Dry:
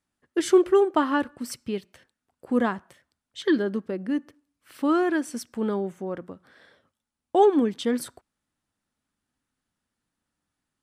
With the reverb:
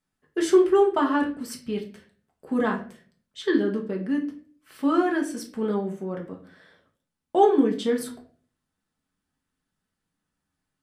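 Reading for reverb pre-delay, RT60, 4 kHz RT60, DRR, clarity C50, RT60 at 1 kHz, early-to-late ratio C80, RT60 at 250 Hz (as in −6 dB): 5 ms, 0.45 s, 0.35 s, 0.0 dB, 10.5 dB, 0.35 s, 15.0 dB, 0.65 s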